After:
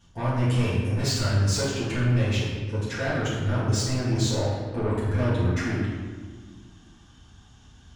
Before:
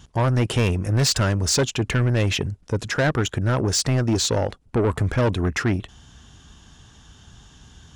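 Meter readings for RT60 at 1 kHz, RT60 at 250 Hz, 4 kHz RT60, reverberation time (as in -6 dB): 1.4 s, 2.6 s, 1.0 s, 1.6 s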